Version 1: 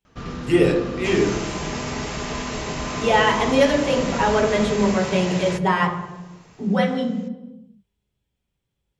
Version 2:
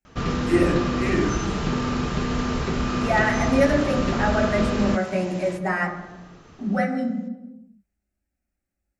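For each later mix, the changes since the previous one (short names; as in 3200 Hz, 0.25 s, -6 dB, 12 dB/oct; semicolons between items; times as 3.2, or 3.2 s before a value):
speech: add fixed phaser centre 670 Hz, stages 8; first sound +7.0 dB; second sound -11.0 dB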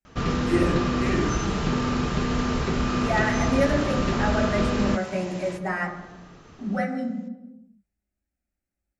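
speech -3.5 dB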